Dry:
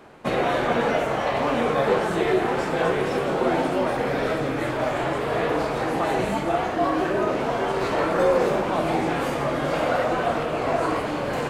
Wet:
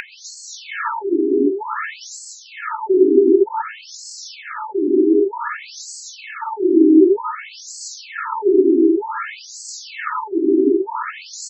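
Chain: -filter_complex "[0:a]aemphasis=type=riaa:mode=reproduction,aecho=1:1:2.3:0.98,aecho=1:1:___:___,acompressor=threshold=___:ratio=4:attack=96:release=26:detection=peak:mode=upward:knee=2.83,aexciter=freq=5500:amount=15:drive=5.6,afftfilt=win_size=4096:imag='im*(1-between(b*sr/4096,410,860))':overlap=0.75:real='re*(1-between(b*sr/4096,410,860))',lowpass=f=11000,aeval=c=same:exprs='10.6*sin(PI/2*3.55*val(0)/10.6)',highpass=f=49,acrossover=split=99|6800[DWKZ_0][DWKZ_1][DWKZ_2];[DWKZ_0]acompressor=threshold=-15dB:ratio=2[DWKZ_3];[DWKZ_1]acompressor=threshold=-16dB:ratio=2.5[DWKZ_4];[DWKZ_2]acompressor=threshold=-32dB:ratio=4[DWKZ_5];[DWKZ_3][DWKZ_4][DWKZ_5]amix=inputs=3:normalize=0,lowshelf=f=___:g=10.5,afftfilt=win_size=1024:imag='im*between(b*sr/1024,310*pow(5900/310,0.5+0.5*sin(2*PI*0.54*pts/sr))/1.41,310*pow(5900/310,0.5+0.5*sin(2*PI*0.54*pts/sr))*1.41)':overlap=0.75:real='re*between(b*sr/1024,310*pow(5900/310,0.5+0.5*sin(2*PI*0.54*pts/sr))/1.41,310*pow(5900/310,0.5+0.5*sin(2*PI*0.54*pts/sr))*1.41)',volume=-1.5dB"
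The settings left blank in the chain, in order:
166, 0.237, -25dB, 340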